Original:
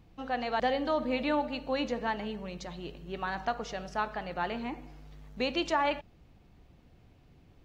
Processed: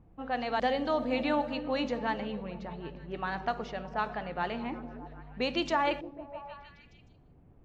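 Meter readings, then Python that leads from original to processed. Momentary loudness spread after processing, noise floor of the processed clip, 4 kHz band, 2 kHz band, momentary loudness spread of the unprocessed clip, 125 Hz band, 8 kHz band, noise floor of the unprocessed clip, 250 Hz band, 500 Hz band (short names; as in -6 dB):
15 LU, -59 dBFS, -0.5 dB, 0.0 dB, 12 LU, +1.5 dB, n/a, -60 dBFS, +1.0 dB, +0.5 dB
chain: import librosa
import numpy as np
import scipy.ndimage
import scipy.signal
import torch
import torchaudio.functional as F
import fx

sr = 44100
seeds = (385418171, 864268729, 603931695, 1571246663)

y = fx.env_lowpass(x, sr, base_hz=1100.0, full_db=-25.0)
y = fx.echo_stepped(y, sr, ms=154, hz=180.0, octaves=0.7, feedback_pct=70, wet_db=-6.5)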